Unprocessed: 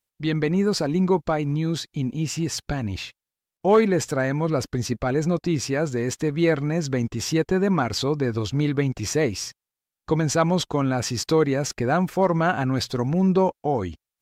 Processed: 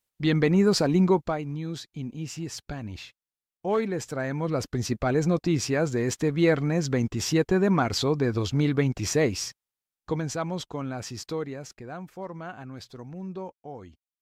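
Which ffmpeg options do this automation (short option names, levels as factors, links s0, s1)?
-af "volume=2.66,afade=t=out:st=0.98:d=0.46:silence=0.334965,afade=t=in:st=4.03:d=1.05:silence=0.421697,afade=t=out:st=9.46:d=0.93:silence=0.354813,afade=t=out:st=11.13:d=0.68:silence=0.446684"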